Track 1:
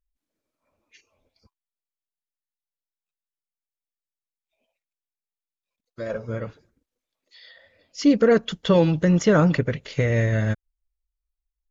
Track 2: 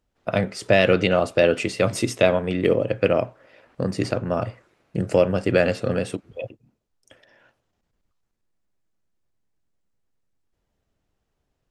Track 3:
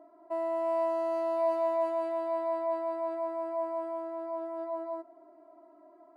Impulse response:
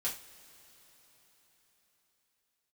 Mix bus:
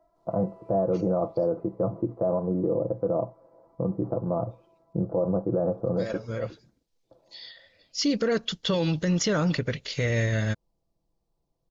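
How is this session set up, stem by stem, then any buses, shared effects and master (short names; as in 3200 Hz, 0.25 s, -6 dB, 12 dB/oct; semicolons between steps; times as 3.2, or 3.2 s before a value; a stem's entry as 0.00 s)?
-4.0 dB, 0.00 s, no send, bell 4700 Hz +12 dB 1.4 oct
-3.5 dB, 0.00 s, no send, steep low-pass 1100 Hz 48 dB/oct; comb 6 ms, depth 56%
-8.5 dB, 0.00 s, no send, HPF 480 Hz; compressor, threshold -37 dBFS, peak gain reduction 11 dB; auto duck -16 dB, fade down 1.80 s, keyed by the second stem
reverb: off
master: limiter -16.5 dBFS, peak gain reduction 8.5 dB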